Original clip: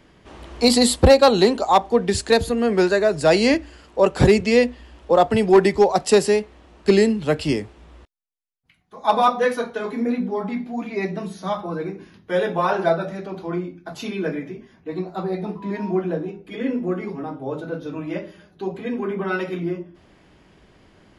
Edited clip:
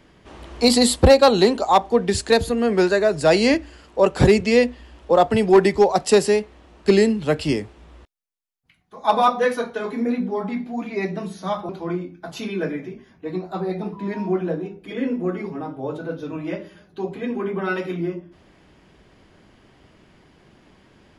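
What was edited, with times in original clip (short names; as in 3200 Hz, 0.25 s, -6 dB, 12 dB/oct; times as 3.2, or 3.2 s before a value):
11.69–13.32 cut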